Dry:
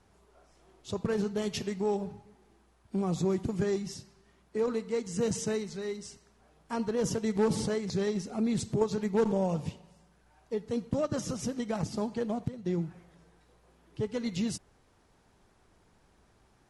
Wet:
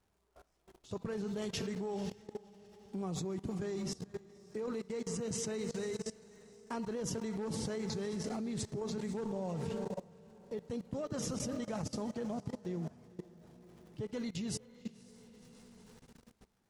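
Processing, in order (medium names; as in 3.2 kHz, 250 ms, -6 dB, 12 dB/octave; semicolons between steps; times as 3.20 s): crackle 230 per s -54 dBFS; echo that smears into a reverb 520 ms, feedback 43%, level -12 dB; level held to a coarse grid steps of 20 dB; trim +2.5 dB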